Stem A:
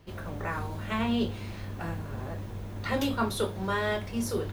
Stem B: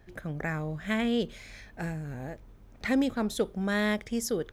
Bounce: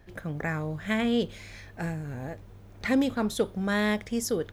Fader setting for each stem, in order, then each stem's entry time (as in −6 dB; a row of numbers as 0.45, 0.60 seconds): −13.5, +1.5 decibels; 0.00, 0.00 seconds